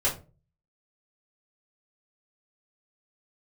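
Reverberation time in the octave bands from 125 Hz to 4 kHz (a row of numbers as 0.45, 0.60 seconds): 0.60, 0.45, 0.40, 0.30, 0.25, 0.20 seconds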